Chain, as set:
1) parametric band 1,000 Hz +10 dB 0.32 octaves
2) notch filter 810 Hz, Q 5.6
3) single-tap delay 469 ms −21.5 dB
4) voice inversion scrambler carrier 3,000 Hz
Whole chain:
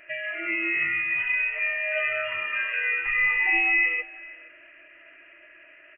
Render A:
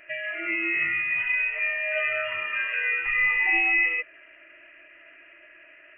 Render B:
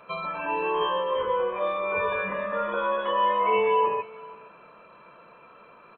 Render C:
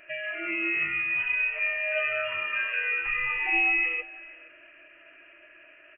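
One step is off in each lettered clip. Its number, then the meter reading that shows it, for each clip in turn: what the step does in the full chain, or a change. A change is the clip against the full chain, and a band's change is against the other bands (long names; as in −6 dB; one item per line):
3, change in momentary loudness spread −2 LU
4, 2 kHz band −24.5 dB
1, 2 kHz band −2.5 dB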